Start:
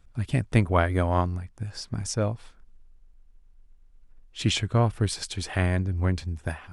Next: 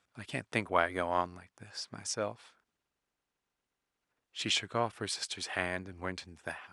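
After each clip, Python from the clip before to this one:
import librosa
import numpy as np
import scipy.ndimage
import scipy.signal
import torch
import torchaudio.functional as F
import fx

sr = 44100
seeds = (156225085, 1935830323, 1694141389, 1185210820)

y = fx.weighting(x, sr, curve='A')
y = y * librosa.db_to_amplitude(-3.5)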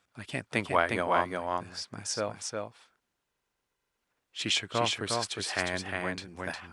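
y = x + 10.0 ** (-3.5 / 20.0) * np.pad(x, (int(358 * sr / 1000.0), 0))[:len(x)]
y = y * librosa.db_to_amplitude(2.5)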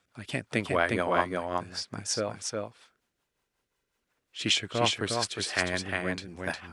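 y = fx.rotary(x, sr, hz=5.5)
y = y * librosa.db_to_amplitude(4.5)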